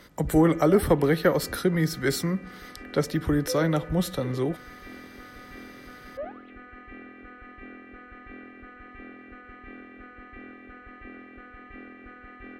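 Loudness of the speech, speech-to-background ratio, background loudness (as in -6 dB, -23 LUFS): -25.0 LUFS, 18.0 dB, -43.0 LUFS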